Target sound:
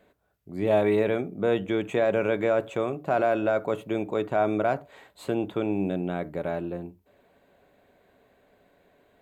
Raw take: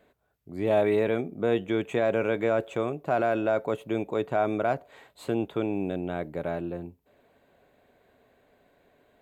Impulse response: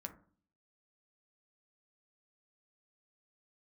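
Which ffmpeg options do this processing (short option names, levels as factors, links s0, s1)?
-filter_complex "[0:a]asplit=2[s0][s1];[1:a]atrim=start_sample=2205,atrim=end_sample=3969[s2];[s1][s2]afir=irnorm=-1:irlink=0,volume=0.891[s3];[s0][s3]amix=inputs=2:normalize=0,volume=0.75"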